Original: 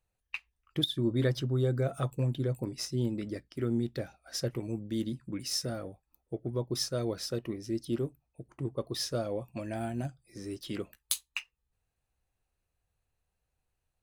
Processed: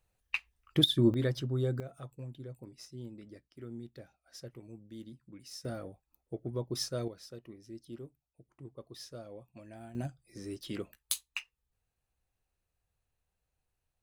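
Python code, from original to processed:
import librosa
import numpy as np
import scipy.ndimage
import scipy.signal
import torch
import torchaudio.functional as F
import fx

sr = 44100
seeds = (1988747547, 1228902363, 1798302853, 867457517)

y = fx.gain(x, sr, db=fx.steps((0.0, 4.5), (1.14, -3.0), (1.8, -14.0), (5.65, -3.0), (7.08, -13.5), (9.95, -2.0)))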